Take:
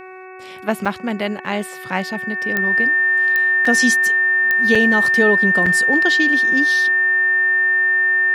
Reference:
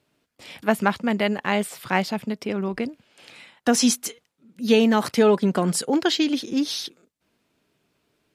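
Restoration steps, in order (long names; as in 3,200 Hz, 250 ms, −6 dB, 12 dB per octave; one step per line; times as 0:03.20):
click removal
hum removal 373.4 Hz, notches 7
notch filter 1,800 Hz, Q 30
repair the gap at 0:00.85/0:03.65/0:04.75/0:05.66, 4.6 ms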